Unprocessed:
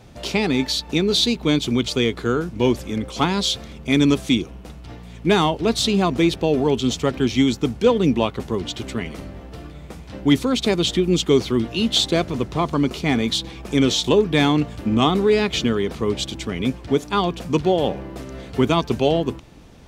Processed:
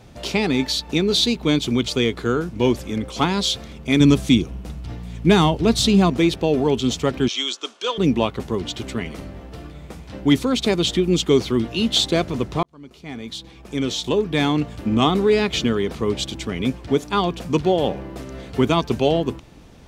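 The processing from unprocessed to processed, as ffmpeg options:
-filter_complex "[0:a]asettb=1/sr,asplit=3[s0][s1][s2];[s0]atrim=end=4.004[s3];[s1]atrim=start=4:end=6.1,asetpts=PTS-STARTPTS,afade=t=in:d=0.004:c=qsin,afade=t=out:st=2.096:d=0.004:c=qsin,bass=f=250:g=7,treble=f=4000:g=2[s4];[s2]atrim=start=6.096[s5];[s3][s4]acrossfade=d=0.004:c1=hsin:c2=qsin[s6];[s6][s5]acrossfade=d=0.004:c1=qsin:c2=hsin,asettb=1/sr,asplit=3[s7][s8][s9];[s7]atrim=end=7.284[s10];[s8]atrim=start=7.28:end=7.98,asetpts=PTS-STARTPTS,afade=t=in:d=0.004:c=qsin,afade=t=out:st=0.696:d=0.004:c=qsin,highpass=f=470:w=0.5412,highpass=f=470:w=1.3066,equalizer=f=480:t=q:w=4:g=-9,equalizer=f=800:t=q:w=4:g=-10,equalizer=f=1200:t=q:w=4:g=4,equalizer=f=2000:t=q:w=4:g=-6,equalizer=f=3300:t=q:w=4:g=7,equalizer=f=6200:t=q:w=4:g=4,lowpass=f=8800:w=0.5412,lowpass=f=8800:w=1.3066[s11];[s9]atrim=start=7.976[s12];[s10][s11]acrossfade=d=0.004:c1=hsin:c2=qsin[s13];[s13][s12]acrossfade=d=0.004:c1=qsin:c2=hsin,asplit=2[s14][s15];[s14]atrim=end=12.63,asetpts=PTS-STARTPTS,afade=t=out:st=12.626:d=0.004:c=hsin[s16];[s15]atrim=start=12.63,asetpts=PTS-STARTPTS,afade=t=in:d=2.38[s17];[s16][s17]concat=n=2:v=0:a=1"

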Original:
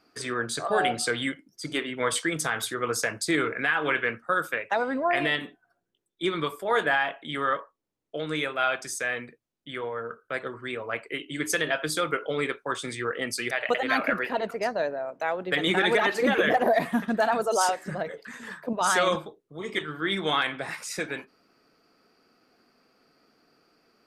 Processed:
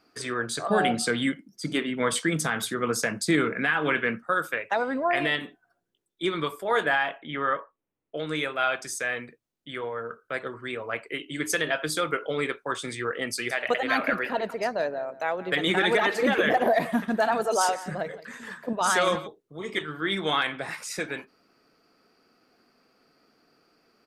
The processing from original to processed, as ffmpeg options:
-filter_complex "[0:a]asettb=1/sr,asplit=3[s0][s1][s2];[s0]atrim=end=0.674[s3];[s1]atrim=start=0.67:end=4.23,asetpts=PTS-STARTPTS,afade=t=in:d=0.004:c=qsin,afade=t=out:st=3.556:d=0.004:c=qsin,equalizer=f=200:t=o:w=0.77:g=12[s4];[s2]atrim=start=4.226[s5];[s3][s4]acrossfade=d=0.004:c1=hsin:c2=qsin[s6];[s6][s5]acrossfade=d=0.004:c1=qsin:c2=hsin,asettb=1/sr,asplit=3[s7][s8][s9];[s7]atrim=end=7.184[s10];[s8]atrim=start=7.18:end=8.17,asetpts=PTS-STARTPTS,afade=t=in:d=0.004:c=qsin,afade=t=out:st=0.986:d=0.004:c=qsin,lowpass=f=3000:w=0.5412,lowpass=f=3000:w=1.3066[s11];[s9]atrim=start=8.166[s12];[s10][s11]acrossfade=d=0.004:c1=hsin:c2=qsin[s13];[s13][s12]acrossfade=d=0.004:c1=qsin:c2=hsin,asplit=3[s14][s15][s16];[s14]afade=t=out:st=13.42:d=0.02[s17];[s15]aecho=1:1:174:0.141,afade=t=in:st=13.42:d=0.02,afade=t=out:st=19.26:d=0.02[s18];[s16]afade=t=in:st=19.26:d=0.02[s19];[s17][s18][s19]amix=inputs=3:normalize=0"

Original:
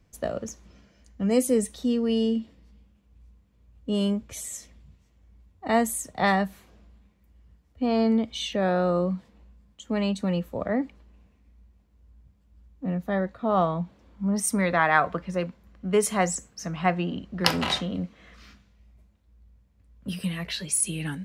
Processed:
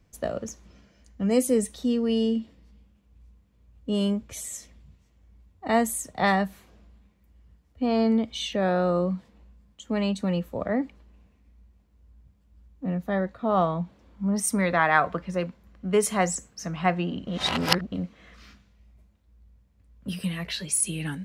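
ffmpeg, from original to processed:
-filter_complex "[0:a]asplit=3[s0][s1][s2];[s0]atrim=end=17.272[s3];[s1]atrim=start=17.268:end=17.922,asetpts=PTS-STARTPTS,areverse[s4];[s2]atrim=start=17.918[s5];[s3][s4]acrossfade=d=0.004:c1=hsin:c2=hsin[s6];[s6][s5]acrossfade=d=0.004:c1=hsin:c2=hsin"

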